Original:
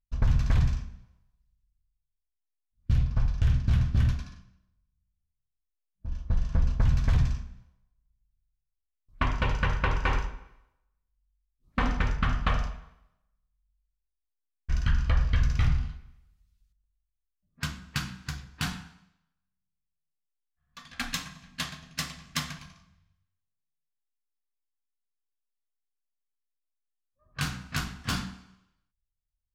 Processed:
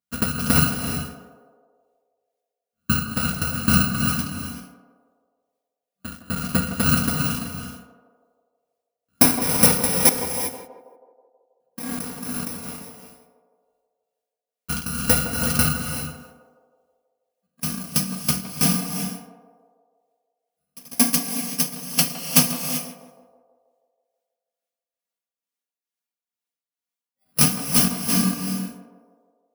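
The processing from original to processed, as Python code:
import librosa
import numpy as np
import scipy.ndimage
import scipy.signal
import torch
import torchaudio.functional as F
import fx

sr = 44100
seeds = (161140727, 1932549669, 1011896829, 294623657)

y = fx.bit_reversed(x, sr, seeds[0], block=32)
y = scipy.signal.sosfilt(scipy.signal.butter(4, 120.0, 'highpass', fs=sr, output='sos'), y)
y = y + 0.84 * np.pad(y, (int(4.2 * sr / 1000.0), 0))[:len(y)]
y = fx.level_steps(y, sr, step_db=21, at=(10.09, 12.7))
y = fx.leveller(y, sr, passes=2)
y = fx.tremolo_shape(y, sr, shape='triangle', hz=2.2, depth_pct=80)
y = fx.echo_banded(y, sr, ms=161, feedback_pct=63, hz=580.0, wet_db=-8.5)
y = fx.rev_gated(y, sr, seeds[1], gate_ms=410, shape='rising', drr_db=7.0)
y = y * 10.0 ** (8.0 / 20.0)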